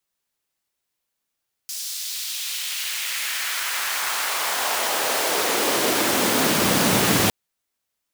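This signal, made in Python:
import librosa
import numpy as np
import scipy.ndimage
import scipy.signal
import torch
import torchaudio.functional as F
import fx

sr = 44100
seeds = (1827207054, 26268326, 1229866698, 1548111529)

y = fx.riser_noise(sr, seeds[0], length_s=5.61, colour='pink', kind='highpass', start_hz=5500.0, end_hz=130.0, q=1.3, swell_db=8.5, law='exponential')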